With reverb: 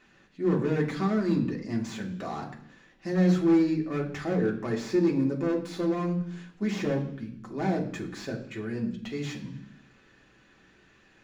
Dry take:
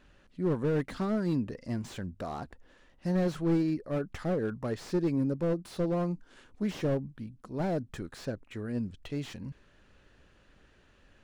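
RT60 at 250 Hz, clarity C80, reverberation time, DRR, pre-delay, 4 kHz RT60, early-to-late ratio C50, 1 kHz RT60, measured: 0.90 s, 13.5 dB, 0.65 s, -1.0 dB, 3 ms, 0.85 s, 10.0 dB, 0.65 s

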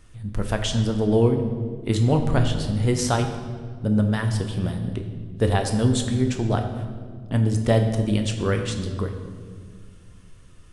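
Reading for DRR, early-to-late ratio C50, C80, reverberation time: 4.5 dB, 7.5 dB, 8.5 dB, 1.8 s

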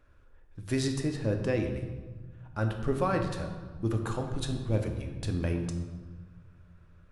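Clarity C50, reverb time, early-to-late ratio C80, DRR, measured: 7.0 dB, 1.4 s, 8.0 dB, 4.0 dB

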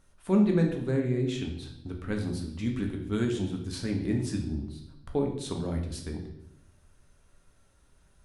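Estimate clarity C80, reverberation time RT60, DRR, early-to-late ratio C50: 10.0 dB, 0.80 s, 2.0 dB, 6.5 dB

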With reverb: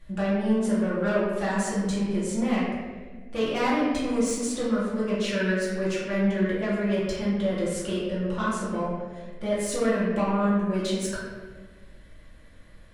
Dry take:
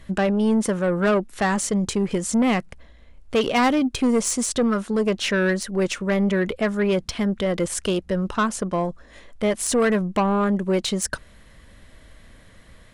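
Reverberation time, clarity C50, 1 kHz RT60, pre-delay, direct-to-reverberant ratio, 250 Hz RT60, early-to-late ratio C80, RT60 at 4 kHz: 1.5 s, -0.5 dB, 1.2 s, 4 ms, -8.5 dB, 1.8 s, 2.0 dB, 0.90 s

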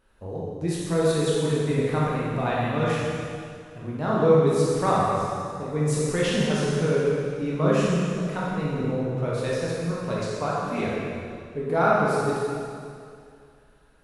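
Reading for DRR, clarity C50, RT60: -7.0 dB, -3.0 dB, 2.3 s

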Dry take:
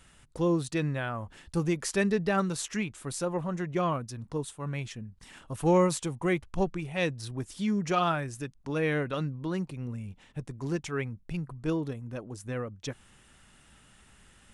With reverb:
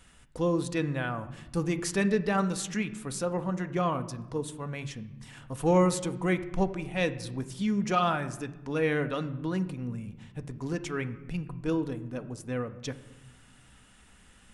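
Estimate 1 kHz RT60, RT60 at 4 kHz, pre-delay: 1.0 s, 0.70 s, 4 ms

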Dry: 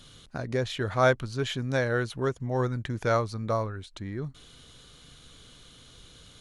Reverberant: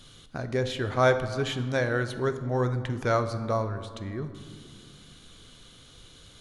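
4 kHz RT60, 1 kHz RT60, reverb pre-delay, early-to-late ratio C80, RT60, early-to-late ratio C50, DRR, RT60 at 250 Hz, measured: 1.0 s, 1.9 s, 3 ms, 12.5 dB, 2.0 s, 11.0 dB, 9.0 dB, 2.9 s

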